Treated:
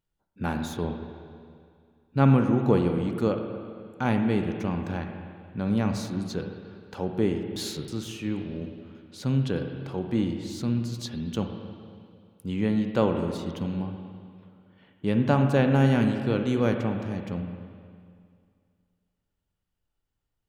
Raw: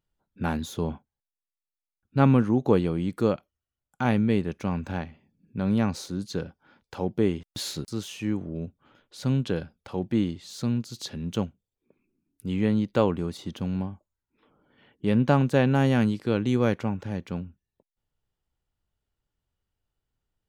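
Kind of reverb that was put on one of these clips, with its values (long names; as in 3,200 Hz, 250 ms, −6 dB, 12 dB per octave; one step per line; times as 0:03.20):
spring reverb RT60 2.2 s, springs 45/51/59 ms, chirp 70 ms, DRR 5 dB
level −1.5 dB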